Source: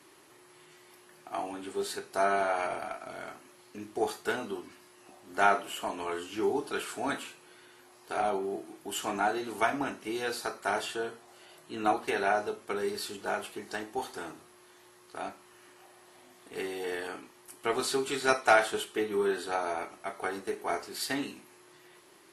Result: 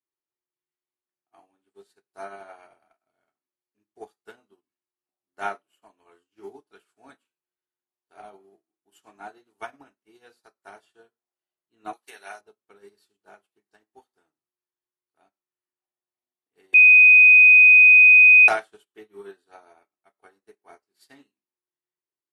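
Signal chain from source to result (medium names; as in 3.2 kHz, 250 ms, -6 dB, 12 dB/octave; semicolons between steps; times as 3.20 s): 11.93–12.41 s: tilt EQ +4 dB/octave; 16.74–18.48 s: bleep 2.5 kHz -12 dBFS; upward expansion 2.5:1, over -46 dBFS; trim +4 dB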